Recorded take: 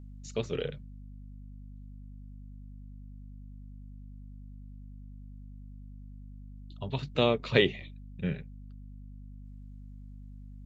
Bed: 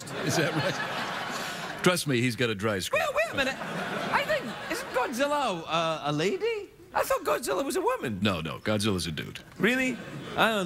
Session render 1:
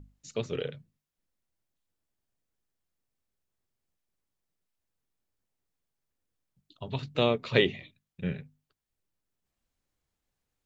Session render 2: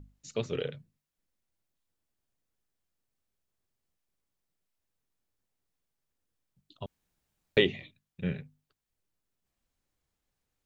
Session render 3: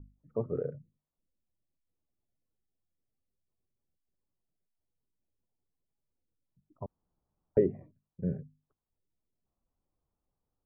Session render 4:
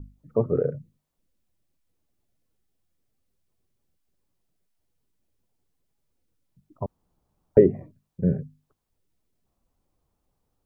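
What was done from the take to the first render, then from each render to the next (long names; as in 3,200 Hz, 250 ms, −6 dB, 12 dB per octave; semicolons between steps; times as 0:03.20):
mains-hum notches 50/100/150/200/250 Hz
0:06.86–0:07.57: fill with room tone
gate on every frequency bin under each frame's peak −30 dB strong; Butterworth low-pass 1,200 Hz 36 dB per octave
level +10 dB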